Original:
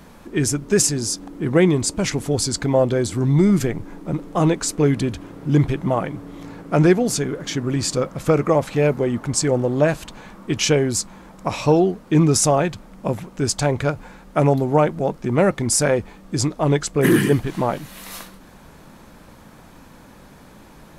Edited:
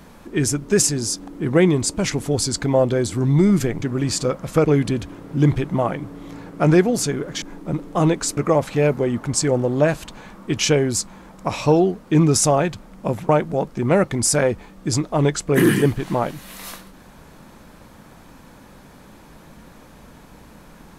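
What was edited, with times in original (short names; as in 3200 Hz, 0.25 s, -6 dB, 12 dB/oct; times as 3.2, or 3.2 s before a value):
3.82–4.77 swap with 7.54–8.37
13.29–14.76 cut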